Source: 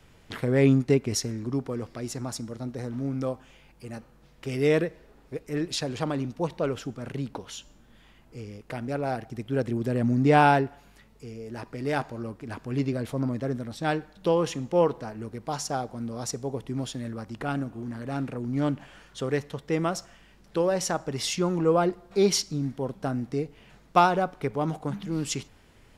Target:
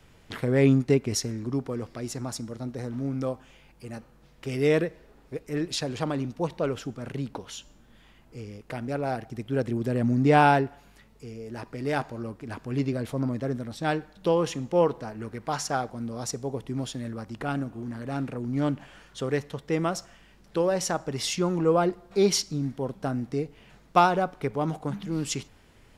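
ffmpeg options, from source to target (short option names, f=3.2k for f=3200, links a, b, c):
-filter_complex "[0:a]asettb=1/sr,asplit=3[a][b][c];[a]atrim=end=15.204[d];[b]atrim=start=15.2:end=15.9,asetpts=PTS-STARTPTS,afade=t=in:d=0.004:c=qsin,afade=t=out:st=0.696:d=0.004:c=qsin,equalizer=f=1.7k:w=0.95:g=7[e];[c]atrim=start=15.896[f];[d][e]acrossfade=d=0.004:c1=hsin:c2=qsin[g];[g][f]acrossfade=d=0.004:c1=qsin:c2=hsin"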